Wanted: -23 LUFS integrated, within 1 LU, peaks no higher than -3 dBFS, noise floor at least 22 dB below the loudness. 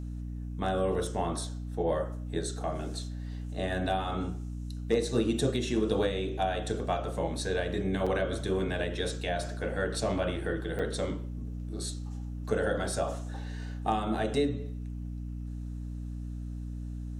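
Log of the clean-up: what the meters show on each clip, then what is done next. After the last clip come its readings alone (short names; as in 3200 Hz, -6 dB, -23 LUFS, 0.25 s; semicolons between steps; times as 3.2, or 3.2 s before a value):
dropouts 2; longest dropout 5.4 ms; hum 60 Hz; harmonics up to 300 Hz; hum level -35 dBFS; loudness -32.5 LUFS; peak -13.0 dBFS; loudness target -23.0 LUFS
-> interpolate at 8.06/10.79, 5.4 ms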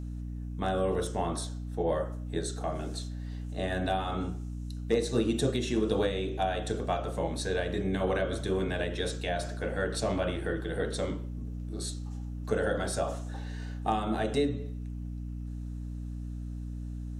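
dropouts 0; hum 60 Hz; harmonics up to 300 Hz; hum level -35 dBFS
-> de-hum 60 Hz, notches 5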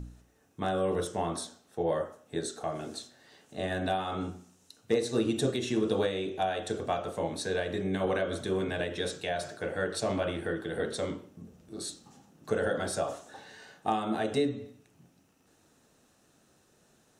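hum none; loudness -32.5 LUFS; peak -13.5 dBFS; loudness target -23.0 LUFS
-> gain +9.5 dB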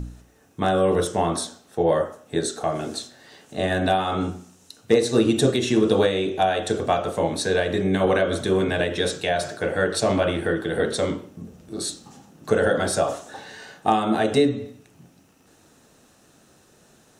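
loudness -23.0 LUFS; peak -4.0 dBFS; noise floor -57 dBFS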